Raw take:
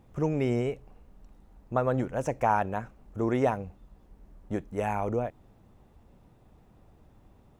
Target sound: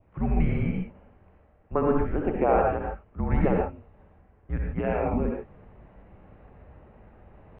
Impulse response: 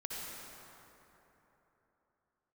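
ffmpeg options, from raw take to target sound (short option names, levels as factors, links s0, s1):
-filter_complex "[0:a]asetrate=50951,aresample=44100,atempo=0.865537,areverse,acompressor=mode=upward:threshold=0.01:ratio=2.5,areverse,highpass=f=190:t=q:w=0.5412,highpass=f=190:t=q:w=1.307,lowpass=f=2800:t=q:w=0.5176,lowpass=f=2800:t=q:w=0.7071,lowpass=f=2800:t=q:w=1.932,afreqshift=-310[s0];[1:a]atrim=start_sample=2205,afade=t=out:st=0.21:d=0.01,atrim=end_sample=9702[s1];[s0][s1]afir=irnorm=-1:irlink=0,adynamicequalizer=threshold=0.00178:dfrequency=1700:dqfactor=2.3:tfrequency=1700:tqfactor=2.3:attack=5:release=100:ratio=0.375:range=2.5:mode=cutabove:tftype=bell,volume=2"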